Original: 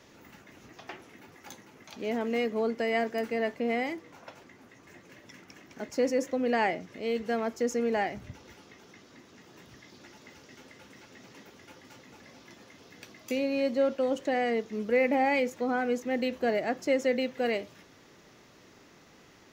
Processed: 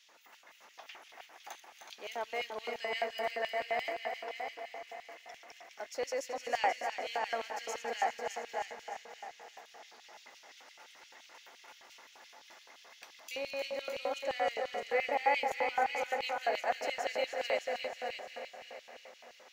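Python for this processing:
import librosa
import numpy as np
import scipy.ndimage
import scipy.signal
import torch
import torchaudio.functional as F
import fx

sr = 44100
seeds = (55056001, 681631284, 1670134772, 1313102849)

y = fx.reverse_delay_fb(x, sr, ms=141, feedback_pct=79, wet_db=-11.5)
y = fx.echo_heads(y, sr, ms=307, heads='first and second', feedback_pct=43, wet_db=-7.5)
y = fx.filter_lfo_highpass(y, sr, shape='square', hz=5.8, low_hz=760.0, high_hz=3000.0, q=1.8)
y = F.gain(torch.from_numpy(y), -4.5).numpy()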